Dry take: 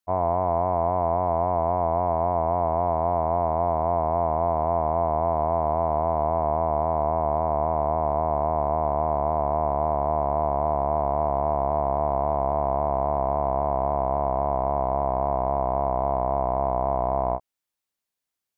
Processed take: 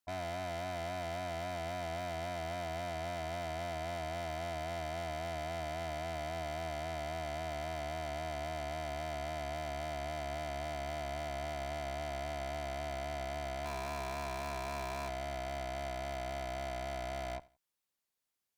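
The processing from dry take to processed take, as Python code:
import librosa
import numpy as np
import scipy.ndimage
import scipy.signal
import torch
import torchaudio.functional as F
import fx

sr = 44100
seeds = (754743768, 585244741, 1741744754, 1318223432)

y = fx.peak_eq(x, sr, hz=1200.0, db=13.0, octaves=0.94, at=(13.65, 15.09))
y = fx.tube_stage(y, sr, drive_db=38.0, bias=0.5)
y = fx.echo_feedback(y, sr, ms=85, feedback_pct=28, wet_db=-22.0)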